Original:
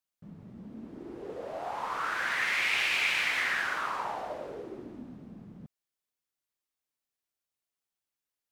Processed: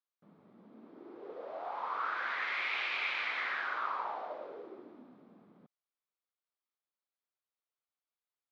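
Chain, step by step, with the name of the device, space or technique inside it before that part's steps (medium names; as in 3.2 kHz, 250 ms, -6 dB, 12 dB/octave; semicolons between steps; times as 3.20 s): phone earpiece (cabinet simulation 360–3900 Hz, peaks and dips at 1.2 kHz +4 dB, 1.8 kHz -4 dB, 2.8 kHz -6 dB); trim -4 dB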